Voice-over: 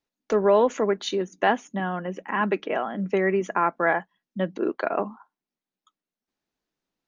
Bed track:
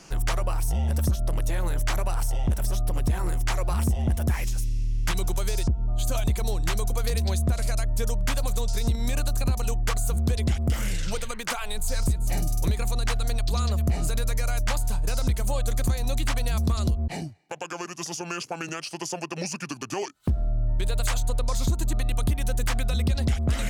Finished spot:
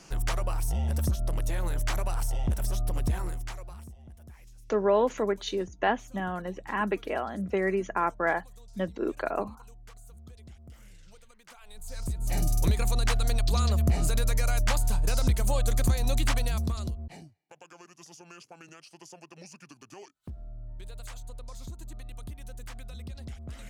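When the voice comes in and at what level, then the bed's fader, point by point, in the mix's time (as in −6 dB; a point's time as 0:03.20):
4.40 s, −4.5 dB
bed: 0:03.15 −3.5 dB
0:03.98 −25 dB
0:11.43 −25 dB
0:12.44 0 dB
0:16.33 0 dB
0:17.34 −17 dB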